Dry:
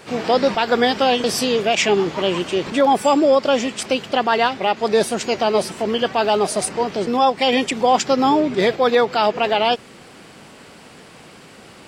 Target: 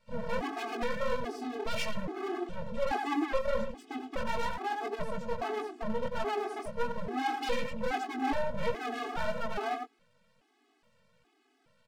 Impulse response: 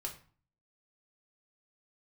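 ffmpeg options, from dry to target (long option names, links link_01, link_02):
-filter_complex "[0:a]afwtdn=0.0794,highshelf=frequency=6300:gain=-10.5,asplit=2[link_01][link_02];[link_02]adelay=90,highpass=300,lowpass=3400,asoftclip=type=hard:threshold=-14.5dB,volume=-8dB[link_03];[link_01][link_03]amix=inputs=2:normalize=0,acrossover=split=150|5800[link_04][link_05][link_06];[link_05]asoftclip=type=tanh:threshold=-18.5dB[link_07];[link_04][link_07][link_06]amix=inputs=3:normalize=0,flanger=delay=16.5:depth=6.9:speed=1.6,aeval=exprs='max(val(0),0)':channel_layout=same,afftfilt=real='re*gt(sin(2*PI*1.2*pts/sr)*(1-2*mod(floor(b*sr/1024/220),2)),0)':imag='im*gt(sin(2*PI*1.2*pts/sr)*(1-2*mod(floor(b*sr/1024/220),2)),0)':win_size=1024:overlap=0.75"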